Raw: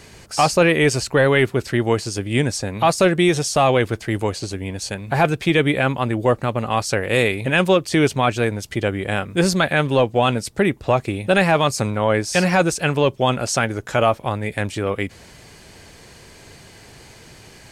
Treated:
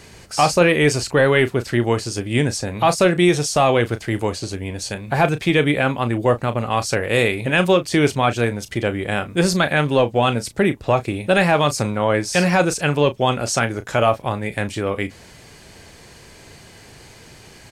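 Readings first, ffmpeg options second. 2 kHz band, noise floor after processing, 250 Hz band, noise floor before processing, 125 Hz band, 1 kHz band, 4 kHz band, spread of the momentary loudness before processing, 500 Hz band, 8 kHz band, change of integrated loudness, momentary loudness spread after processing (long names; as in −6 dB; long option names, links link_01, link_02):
+0.5 dB, −45 dBFS, +0.5 dB, −45 dBFS, 0.0 dB, +0.5 dB, +0.5 dB, 8 LU, +0.5 dB, +0.5 dB, +0.5 dB, 8 LU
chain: -filter_complex "[0:a]asplit=2[link_01][link_02];[link_02]adelay=34,volume=-12dB[link_03];[link_01][link_03]amix=inputs=2:normalize=0"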